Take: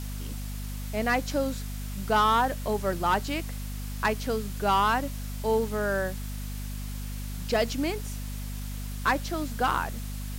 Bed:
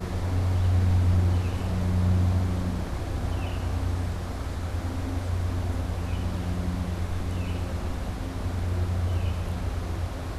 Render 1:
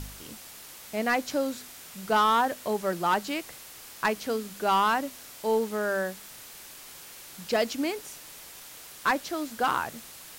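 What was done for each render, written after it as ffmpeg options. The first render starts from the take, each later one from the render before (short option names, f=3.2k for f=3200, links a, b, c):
-af "bandreject=f=50:t=h:w=4,bandreject=f=100:t=h:w=4,bandreject=f=150:t=h:w=4,bandreject=f=200:t=h:w=4,bandreject=f=250:t=h:w=4"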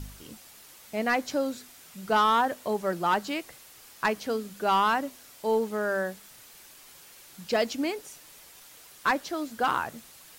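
-af "afftdn=nr=6:nf=-46"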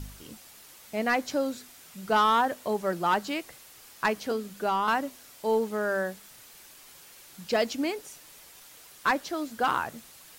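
-filter_complex "[0:a]asettb=1/sr,asplit=3[a][b][c];[a]atrim=end=4.314[d];[b]atrim=start=4.31:end=4.88,asetpts=PTS-STARTPTS,afade=t=in:d=0.004:c=qsin,afade=t=out:st=0.566:d=0.004:c=qsin,acrossover=split=1400|3900[e][f][g];[e]acompressor=threshold=-24dB:ratio=4[h];[f]acompressor=threshold=-42dB:ratio=4[i];[g]acompressor=threshold=-48dB:ratio=4[j];[h][i][j]amix=inputs=3:normalize=0[k];[c]atrim=start=4.876[l];[d][k]acrossfade=d=0.004:c1=hsin:c2=qsin[m];[m][l]acrossfade=d=0.004:c1=qsin:c2=hsin"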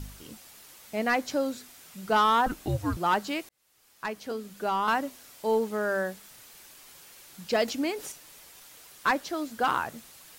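-filter_complex "[0:a]asettb=1/sr,asplit=3[a][b][c];[a]atrim=end=2.464[d];[b]atrim=start=2.46:end=2.97,asetpts=PTS-STARTPTS,afade=t=in:d=0.004:c=qsin,afade=t=out:st=0.506:d=0.004:c=qsin,afreqshift=-290[e];[c]atrim=start=2.966[f];[d][e]acrossfade=d=0.004:c1=hsin:c2=qsin[g];[g][f]acrossfade=d=0.004:c1=qsin:c2=hsin,asettb=1/sr,asplit=3[h][i][j];[h]atrim=end=7.684[k];[i]atrim=start=7.68:end=8.12,asetpts=PTS-STARTPTS,afade=t=in:d=0.004:c=qsin,afade=t=out:st=0.436:d=0.004:c=qsin,acompressor=mode=upward:threshold=-30dB:ratio=2.5:attack=3.2:release=140:knee=2.83:detection=peak[l];[j]atrim=start=8.116[m];[k][l]acrossfade=d=0.004:c1=hsin:c2=qsin[n];[n][m]acrossfade=d=0.004:c1=qsin:c2=hsin,asplit=2[o][p];[o]atrim=end=3.49,asetpts=PTS-STARTPTS,afade=t=out:st=3.486:d=0.004:c=hsin[q];[p]atrim=start=3.49,asetpts=PTS-STARTPTS,afade=t=in:d=1.39[r];[q][r]concat=n=2:v=0:a=1"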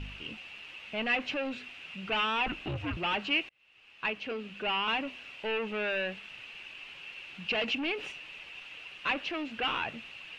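-af "asoftclip=type=tanh:threshold=-31.5dB,lowpass=f=2.7k:t=q:w=11"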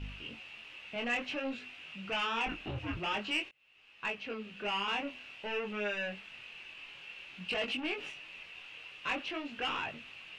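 -af "asoftclip=type=tanh:threshold=-21dB,flanger=delay=19.5:depth=5.7:speed=0.51"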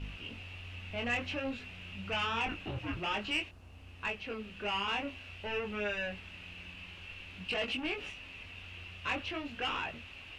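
-filter_complex "[1:a]volume=-25.5dB[a];[0:a][a]amix=inputs=2:normalize=0"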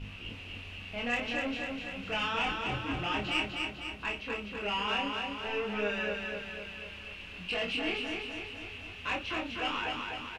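-filter_complex "[0:a]asplit=2[a][b];[b]adelay=29,volume=-5dB[c];[a][c]amix=inputs=2:normalize=0,aecho=1:1:250|500|750|1000|1250|1500|1750|2000:0.631|0.353|0.198|0.111|0.0621|0.0347|0.0195|0.0109"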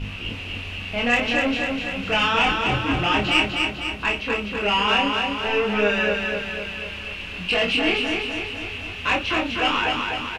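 -af "volume=12dB"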